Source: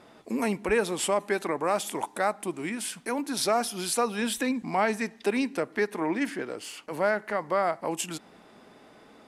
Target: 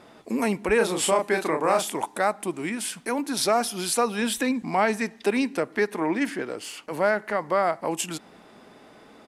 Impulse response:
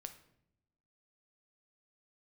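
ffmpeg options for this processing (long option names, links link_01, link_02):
-filter_complex "[0:a]asplit=3[link_01][link_02][link_03];[link_01]afade=type=out:start_time=0.79:duration=0.02[link_04];[link_02]asplit=2[link_05][link_06];[link_06]adelay=32,volume=-3.5dB[link_07];[link_05][link_07]amix=inputs=2:normalize=0,afade=type=in:start_time=0.79:duration=0.02,afade=type=out:start_time=1.86:duration=0.02[link_08];[link_03]afade=type=in:start_time=1.86:duration=0.02[link_09];[link_04][link_08][link_09]amix=inputs=3:normalize=0,volume=3dB"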